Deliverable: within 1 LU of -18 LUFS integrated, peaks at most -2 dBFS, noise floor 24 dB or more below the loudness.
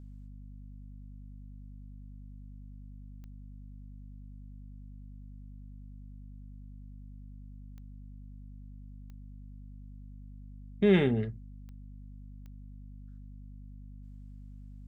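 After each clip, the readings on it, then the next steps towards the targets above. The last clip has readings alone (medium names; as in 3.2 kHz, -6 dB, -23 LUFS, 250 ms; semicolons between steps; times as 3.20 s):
clicks found 5; hum 50 Hz; highest harmonic 250 Hz; hum level -45 dBFS; loudness -27.5 LUFS; peak level -12.0 dBFS; loudness target -18.0 LUFS
-> de-click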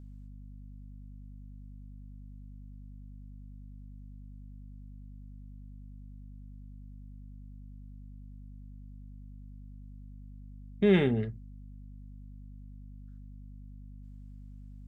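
clicks found 0; hum 50 Hz; highest harmonic 250 Hz; hum level -45 dBFS
-> de-hum 50 Hz, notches 5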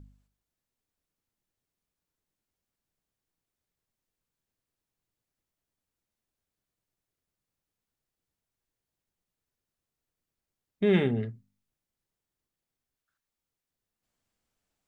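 hum not found; loudness -27.0 LUFS; peak level -11.5 dBFS; loudness target -18.0 LUFS
-> trim +9 dB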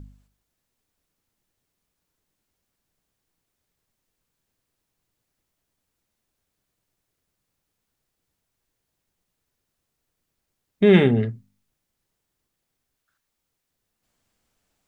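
loudness -18.0 LUFS; peak level -2.5 dBFS; noise floor -80 dBFS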